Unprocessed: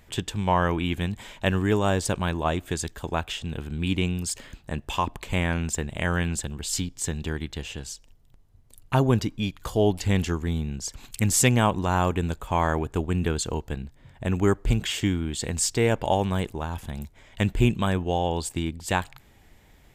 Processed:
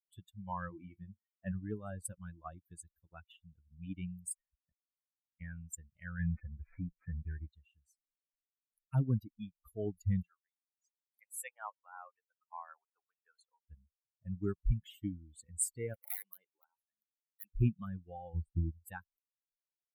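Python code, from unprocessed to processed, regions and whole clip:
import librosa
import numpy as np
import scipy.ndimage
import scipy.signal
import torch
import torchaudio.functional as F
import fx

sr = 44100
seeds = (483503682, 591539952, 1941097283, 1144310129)

y = fx.chain(x, sr, fx.highpass(hz=83.0, slope=12),
    fx.peak_eq(hz=5800.0, db=-11.5, octaves=1.5),
    fx.room_flutter(wall_m=5.5, rt60_s=0.22), at=(0.7, 1.52))
y = fx.chain(y, sr, fx.peak_eq(hz=780.0, db=4.5, octaves=1.8),
    fx.gate_flip(shuts_db=-22.0, range_db=-32),
    fx.band_squash(depth_pct=40), at=(4.7, 5.41))
y = fx.chain(y, sr, fx.cvsd(bps=64000),
    fx.cheby_ripple(hz=2500.0, ripple_db=3),
    fx.leveller(passes=3), at=(6.19, 7.53))
y = fx.chain(y, sr, fx.highpass(hz=560.0, slope=24),
    fx.high_shelf(hz=3600.0, db=-10.5), at=(10.22, 13.7))
y = fx.chain(y, sr, fx.highpass(hz=410.0, slope=12),
    fx.high_shelf(hz=6300.0, db=-7.0),
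    fx.overflow_wrap(gain_db=17.5), at=(15.94, 17.53))
y = fx.chain(y, sr, fx.lowpass(hz=1700.0, slope=6),
    fx.low_shelf(hz=260.0, db=8.5), at=(18.34, 18.85))
y = fx.bin_expand(y, sr, power=3.0)
y = fx.curve_eq(y, sr, hz=(170.0, 620.0, 1400.0, 5800.0, 8800.0), db=(0, -13, -6, -25, 5))
y = y * librosa.db_to_amplitude(-4.0)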